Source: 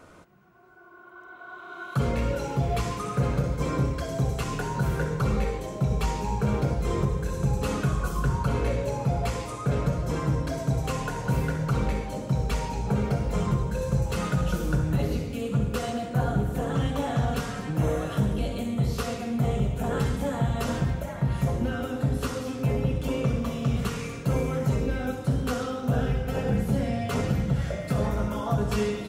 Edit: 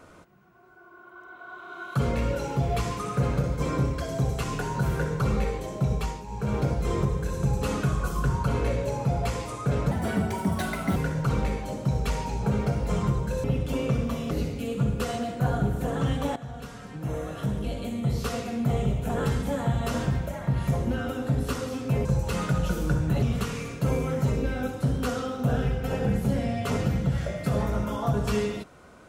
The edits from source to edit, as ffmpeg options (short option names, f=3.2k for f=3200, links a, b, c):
-filter_complex "[0:a]asplit=10[a][b][c][d][e][f][g][h][i][j];[a]atrim=end=6.25,asetpts=PTS-STARTPTS,afade=t=out:st=5.9:d=0.35:silence=0.266073[k];[b]atrim=start=6.25:end=6.26,asetpts=PTS-STARTPTS,volume=-11.5dB[l];[c]atrim=start=6.26:end=9.914,asetpts=PTS-STARTPTS,afade=t=in:d=0.35:silence=0.266073[m];[d]atrim=start=9.91:end=11.4,asetpts=PTS-STARTPTS,asetrate=62622,aresample=44100[n];[e]atrim=start=11.396:end=13.882[o];[f]atrim=start=22.788:end=23.662[p];[g]atrim=start=15.048:end=17.1,asetpts=PTS-STARTPTS,afade=t=out:st=2.048:d=0.004:c=hsin:silence=0.16788[q];[h]atrim=start=17.1:end=22.792,asetpts=PTS-STARTPTS,afade=t=in:d=1.97:silence=0.16788[r];[i]atrim=start=13.878:end=15.052[s];[j]atrim=start=23.658[t];[k][l][m]concat=n=3:v=0:a=1[u];[u][n]acrossfade=d=0.004:c1=hsin:c2=hsin[v];[v][o]acrossfade=d=0.004:c1=hsin:c2=hsin[w];[w][p]acrossfade=d=0.004:c1=hsin:c2=hsin[x];[q][r]concat=n=2:v=0:a=1[y];[x][y]acrossfade=d=0.004:c1=hsin:c2=hsin[z];[z][s]acrossfade=d=0.004:c1=hsin:c2=hsin[aa];[aa][t]acrossfade=d=0.004:c1=hsin:c2=hsin"